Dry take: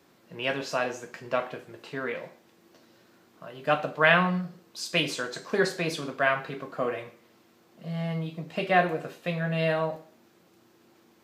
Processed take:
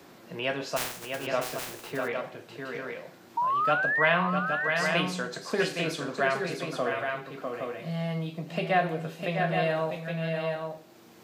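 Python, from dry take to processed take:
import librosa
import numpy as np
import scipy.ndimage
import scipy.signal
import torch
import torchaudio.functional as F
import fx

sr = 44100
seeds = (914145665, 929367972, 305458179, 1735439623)

p1 = fx.spec_flatten(x, sr, power=0.11, at=(0.76, 1.25), fade=0.02)
p2 = fx.peak_eq(p1, sr, hz=700.0, db=2.5, octaves=0.36)
p3 = fx.spec_paint(p2, sr, seeds[0], shape='rise', start_s=3.37, length_s=0.72, low_hz=920.0, high_hz=2100.0, level_db=-24.0)
p4 = p3 + fx.echo_multitap(p3, sr, ms=(650, 815), db=(-7.5, -7.5), dry=0)
p5 = fx.band_squash(p4, sr, depth_pct=40)
y = F.gain(torch.from_numpy(p5), -2.5).numpy()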